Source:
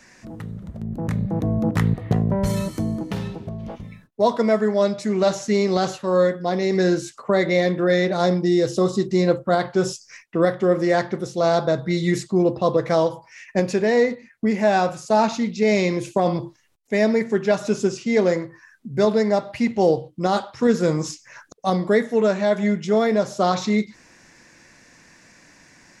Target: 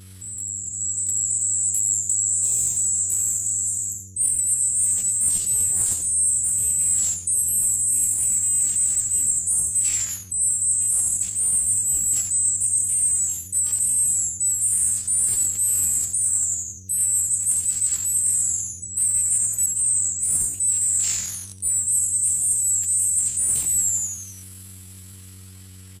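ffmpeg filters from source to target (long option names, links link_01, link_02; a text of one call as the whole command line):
ffmpeg -i in.wav -filter_complex "[0:a]afftfilt=real='real(if(lt(b,736),b+184*(1-2*mod(floor(b/184),2)),b),0)':imag='imag(if(lt(b,736),b+184*(1-2*mod(floor(b/184),2)),b),0)':win_size=2048:overlap=0.75,aemphasis=mode=reproduction:type=cd,acrossover=split=200|4200[link_01][link_02][link_03];[link_03]dynaudnorm=framelen=230:gausssize=13:maxgain=10dB[link_04];[link_01][link_02][link_04]amix=inputs=3:normalize=0,asplit=8[link_05][link_06][link_07][link_08][link_09][link_10][link_11][link_12];[link_06]adelay=87,afreqshift=-150,volume=-5.5dB[link_13];[link_07]adelay=174,afreqshift=-300,volume=-10.7dB[link_14];[link_08]adelay=261,afreqshift=-450,volume=-15.9dB[link_15];[link_09]adelay=348,afreqshift=-600,volume=-21.1dB[link_16];[link_10]adelay=435,afreqshift=-750,volume=-26.3dB[link_17];[link_11]adelay=522,afreqshift=-900,volume=-31.5dB[link_18];[link_12]adelay=609,afreqshift=-1050,volume=-36.7dB[link_19];[link_05][link_13][link_14][link_15][link_16][link_17][link_18][link_19]amix=inputs=8:normalize=0,areverse,acompressor=threshold=-25dB:ratio=5,areverse,aeval=exprs='val(0)+0.00178*(sin(2*PI*50*n/s)+sin(2*PI*2*50*n/s)/2+sin(2*PI*3*50*n/s)/3+sin(2*PI*4*50*n/s)/4+sin(2*PI*5*50*n/s)/5)':channel_layout=same,asetrate=83250,aresample=44100,atempo=0.529732,bass=frequency=250:gain=14,treble=frequency=4000:gain=6" out.wav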